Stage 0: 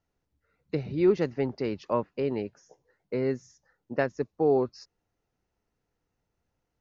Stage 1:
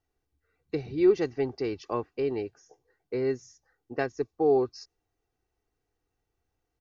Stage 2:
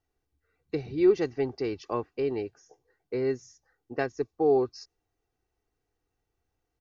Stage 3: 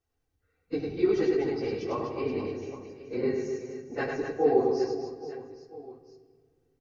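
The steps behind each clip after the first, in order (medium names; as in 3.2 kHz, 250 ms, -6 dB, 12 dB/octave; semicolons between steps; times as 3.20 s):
comb 2.6 ms, depth 58%; dynamic bell 5.8 kHz, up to +5 dB, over -58 dBFS, Q 1.3; trim -2.5 dB
no audible change
phase randomisation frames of 50 ms; reverse bouncing-ball echo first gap 100 ms, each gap 1.5×, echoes 5; on a send at -8 dB: reverberation RT60 1.8 s, pre-delay 4 ms; on the sum: trim -2 dB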